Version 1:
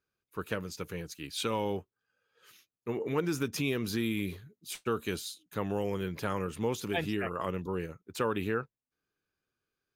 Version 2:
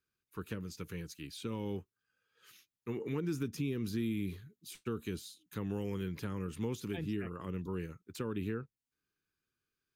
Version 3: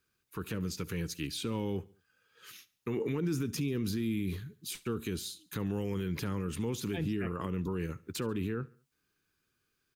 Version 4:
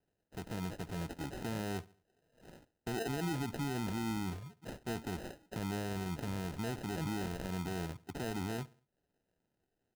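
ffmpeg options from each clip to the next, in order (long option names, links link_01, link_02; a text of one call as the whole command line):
ffmpeg -i in.wav -filter_complex "[0:a]equalizer=frequency=640:width_type=o:width=0.98:gain=-11,acrossover=split=520[link_01][link_02];[link_02]acompressor=threshold=-46dB:ratio=6[link_03];[link_01][link_03]amix=inputs=2:normalize=0,volume=-1dB" out.wav
ffmpeg -i in.wav -af "alimiter=level_in=10dB:limit=-24dB:level=0:latency=1:release=60,volume=-10dB,aecho=1:1:70|140|210:0.0794|0.035|0.0154,volume=9dB" out.wav
ffmpeg -i in.wav -af "acrusher=samples=39:mix=1:aa=0.000001,volume=-4dB" out.wav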